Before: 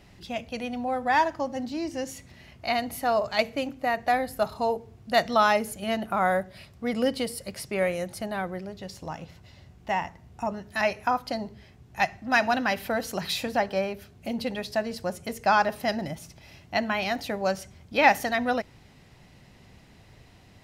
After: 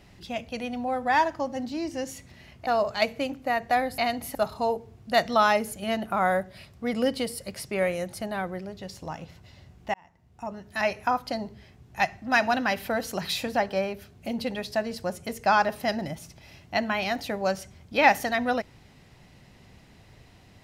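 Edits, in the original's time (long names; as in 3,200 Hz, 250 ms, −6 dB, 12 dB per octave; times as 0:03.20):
0:02.67–0:03.04: move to 0:04.35
0:09.94–0:10.94: fade in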